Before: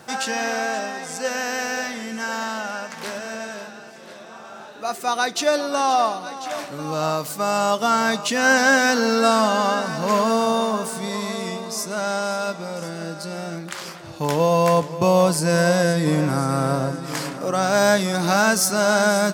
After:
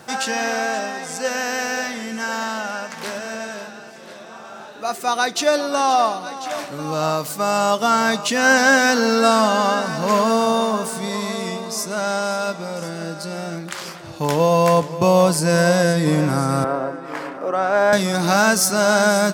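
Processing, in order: 16.64–17.93 s: three-band isolator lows -21 dB, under 260 Hz, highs -19 dB, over 2.5 kHz; trim +2 dB

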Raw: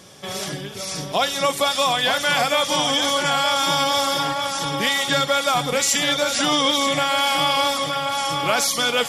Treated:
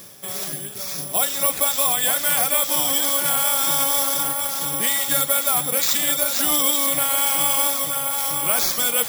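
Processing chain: reverse; upward compressor, threshold -31 dBFS; reverse; careless resampling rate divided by 4×, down none, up zero stuff; trim -6 dB

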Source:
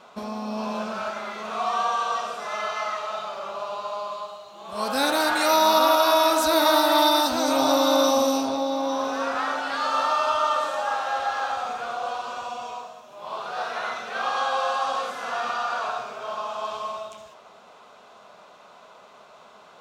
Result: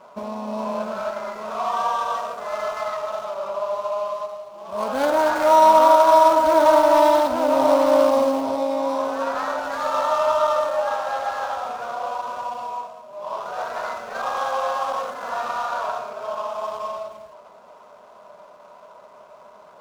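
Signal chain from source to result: median filter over 15 samples; small resonant body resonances 600/960 Hz, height 10 dB, ringing for 45 ms

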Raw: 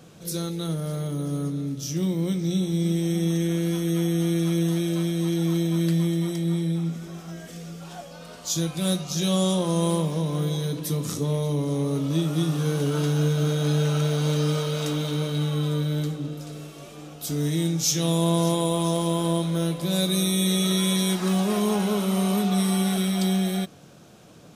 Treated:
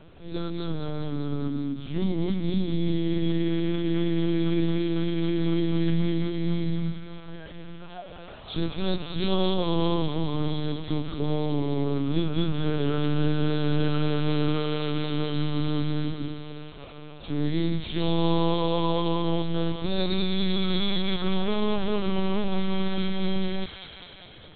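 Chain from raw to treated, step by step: on a send: feedback echo behind a high-pass 202 ms, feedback 72%, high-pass 1.4 kHz, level -6.5 dB; on the sum: LPC vocoder at 8 kHz pitch kept

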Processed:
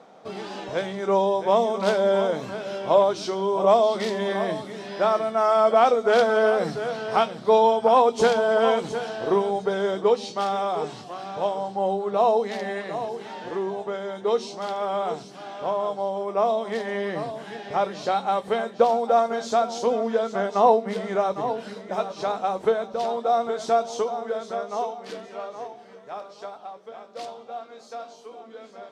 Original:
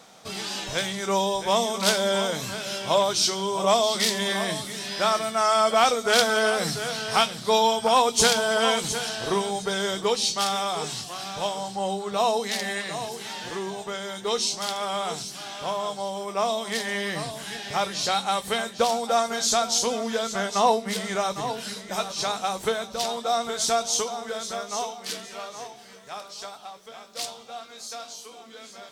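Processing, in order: band-pass filter 460 Hz, Q 0.82; trim +5.5 dB

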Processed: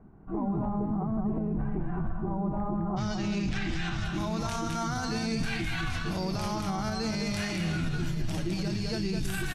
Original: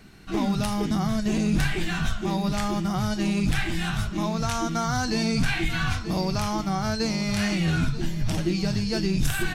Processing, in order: Chebyshev low-pass 1 kHz, order 3, from 2.96 s 6.2 kHz, from 4.04 s 12 kHz; delay 209 ms -5.5 dB; peak limiter -20 dBFS, peak gain reduction 8.5 dB; trim -2.5 dB

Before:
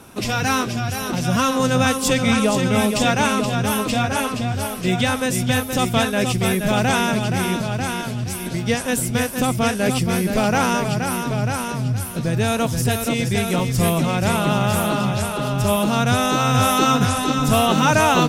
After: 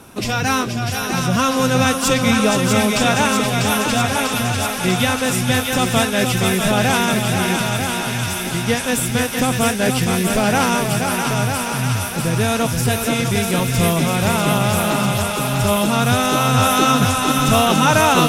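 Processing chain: thinning echo 645 ms, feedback 81%, high-pass 1 kHz, level -4 dB; trim +1.5 dB

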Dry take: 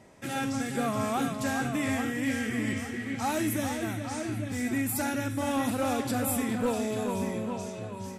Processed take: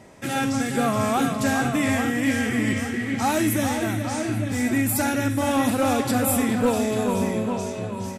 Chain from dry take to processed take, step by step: echo from a far wall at 83 m, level -12 dB; trim +7 dB

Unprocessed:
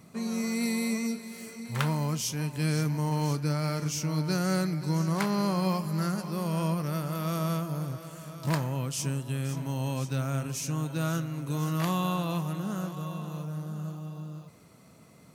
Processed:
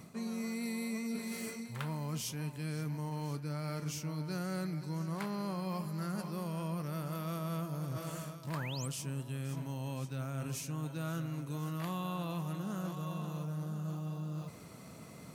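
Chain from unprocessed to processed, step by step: dynamic bell 6 kHz, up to -5 dB, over -51 dBFS, Q 1.8; reverse; compression 6:1, threshold -41 dBFS, peak gain reduction 16.5 dB; reverse; painted sound rise, 8.54–8.88 s, 960–9600 Hz -50 dBFS; trim +4.5 dB

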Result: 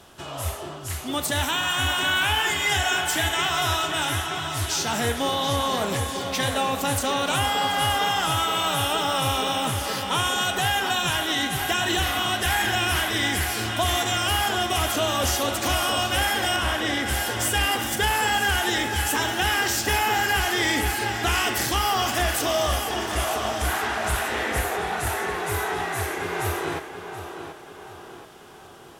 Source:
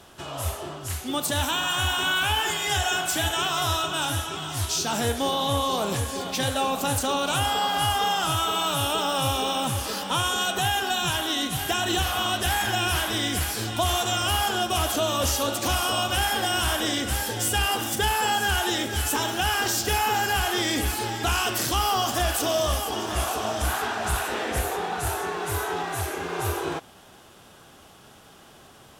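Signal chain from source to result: 16.56–17.06 s: treble shelf 5.1 kHz -10.5 dB; tape echo 730 ms, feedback 53%, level -7.5 dB, low-pass 4.3 kHz; dynamic bell 2 kHz, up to +8 dB, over -47 dBFS, Q 3.3

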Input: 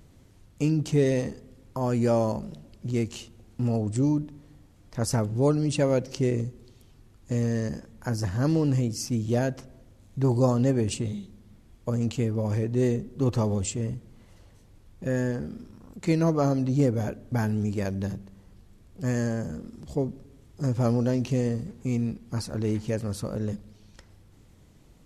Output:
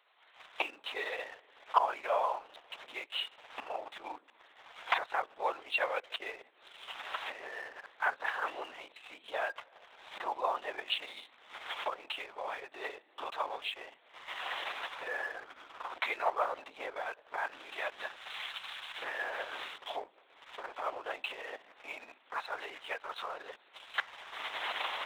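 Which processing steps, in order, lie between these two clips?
17.52–19.77 s: zero-crossing glitches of -28.5 dBFS; recorder AGC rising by 36 dB/s; LPC vocoder at 8 kHz whisper; high-pass 810 Hz 24 dB/octave; waveshaping leveller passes 1

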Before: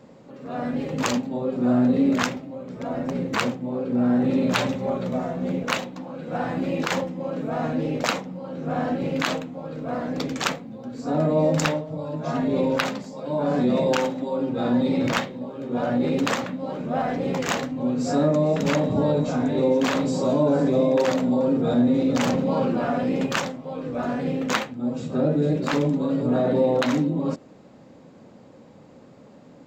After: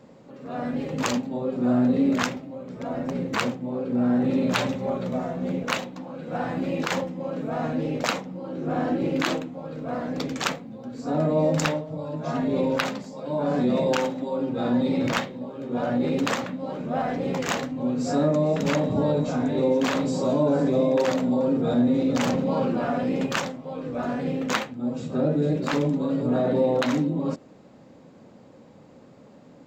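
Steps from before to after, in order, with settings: 8.34–9.48 s: peaking EQ 340 Hz +10.5 dB 0.35 oct; trim -1.5 dB

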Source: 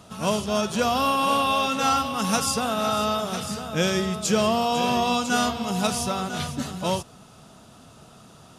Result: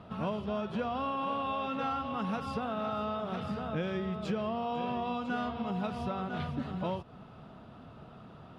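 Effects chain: distance through air 430 m; compression 4:1, threshold -32 dBFS, peak gain reduction 12.5 dB

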